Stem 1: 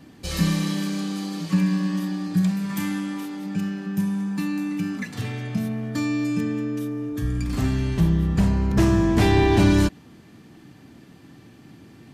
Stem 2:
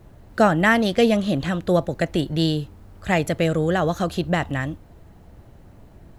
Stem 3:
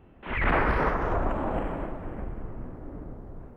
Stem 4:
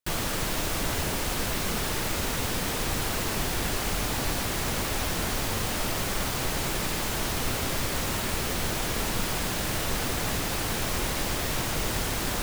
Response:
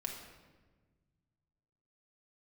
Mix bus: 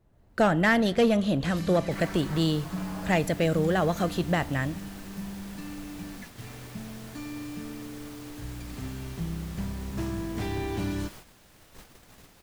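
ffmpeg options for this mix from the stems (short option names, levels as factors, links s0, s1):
-filter_complex "[0:a]adelay=1200,volume=0.2[s0];[1:a]asoftclip=type=tanh:threshold=0.282,dynaudnorm=f=100:g=3:m=1.78,volume=0.355,asplit=3[s1][s2][s3];[s2]volume=0.178[s4];[2:a]highpass=f=1500:p=1,asplit=2[s5][s6];[s6]adelay=4.4,afreqshift=-0.63[s7];[s5][s7]amix=inputs=2:normalize=1,adelay=1500,volume=0.891[s8];[3:a]adelay=1850,volume=0.126[s9];[s3]apad=whole_len=223486[s10];[s8][s10]sidechaincompress=threshold=0.0251:ratio=8:attack=16:release=447[s11];[4:a]atrim=start_sample=2205[s12];[s4][s12]afir=irnorm=-1:irlink=0[s13];[s0][s1][s11][s9][s13]amix=inputs=5:normalize=0,agate=range=0.316:threshold=0.00631:ratio=16:detection=peak"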